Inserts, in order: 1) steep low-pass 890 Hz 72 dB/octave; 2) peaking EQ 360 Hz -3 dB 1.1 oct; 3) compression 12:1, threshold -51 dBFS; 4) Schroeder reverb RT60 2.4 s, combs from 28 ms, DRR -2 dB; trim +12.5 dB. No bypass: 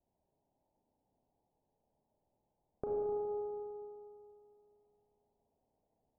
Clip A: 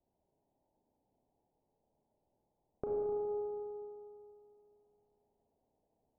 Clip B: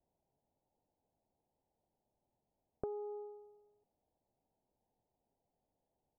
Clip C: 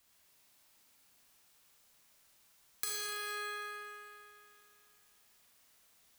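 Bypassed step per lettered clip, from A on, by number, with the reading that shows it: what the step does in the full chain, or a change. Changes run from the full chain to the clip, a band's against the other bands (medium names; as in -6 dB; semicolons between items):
2, 1 kHz band -2.0 dB; 4, crest factor change +8.0 dB; 1, crest factor change +13.5 dB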